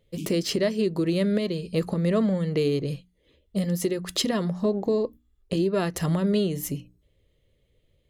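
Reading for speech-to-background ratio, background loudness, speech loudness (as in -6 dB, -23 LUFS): 14.0 dB, -40.0 LUFS, -26.0 LUFS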